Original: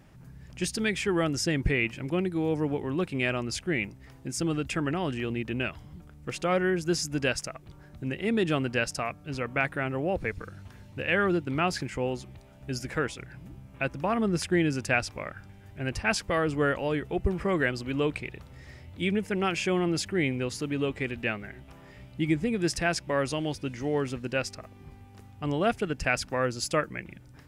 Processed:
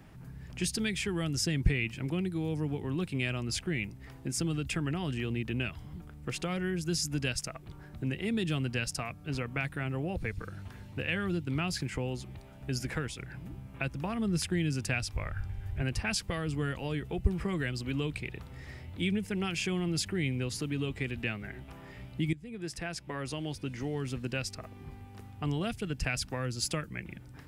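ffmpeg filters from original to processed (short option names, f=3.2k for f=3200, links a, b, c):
-filter_complex "[0:a]asplit=3[a][b][c];[a]afade=t=out:st=15.12:d=0.02[d];[b]asubboost=boost=10.5:cutoff=67,afade=t=in:st=15.12:d=0.02,afade=t=out:st=15.81:d=0.02[e];[c]afade=t=in:st=15.81:d=0.02[f];[d][e][f]amix=inputs=3:normalize=0,asplit=2[g][h];[g]atrim=end=22.33,asetpts=PTS-STARTPTS,afade=t=out:st=22.326:d=0.004:c=hsin:silence=0.133352[i];[h]atrim=start=22.33,asetpts=PTS-STARTPTS,afade=t=in:d=1.93:silence=0.133352[j];[i][j]concat=n=2:v=0:a=1,equalizer=f=6.2k:w=1.6:g=-3.5,bandreject=f=570:w=12,acrossover=split=190|3000[k][l][m];[l]acompressor=threshold=-38dB:ratio=6[n];[k][n][m]amix=inputs=3:normalize=0,volume=2dB"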